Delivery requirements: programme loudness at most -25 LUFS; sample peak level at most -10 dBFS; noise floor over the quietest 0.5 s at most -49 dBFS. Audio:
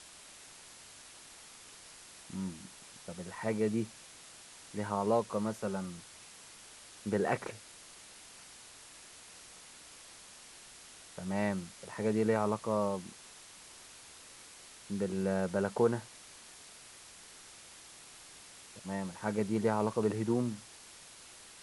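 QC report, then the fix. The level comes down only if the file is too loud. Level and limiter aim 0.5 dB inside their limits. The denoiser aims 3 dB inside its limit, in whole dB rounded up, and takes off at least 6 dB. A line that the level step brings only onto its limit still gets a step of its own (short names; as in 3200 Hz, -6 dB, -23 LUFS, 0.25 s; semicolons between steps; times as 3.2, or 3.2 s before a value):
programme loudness -34.5 LUFS: OK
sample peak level -16.0 dBFS: OK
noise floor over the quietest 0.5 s -54 dBFS: OK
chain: none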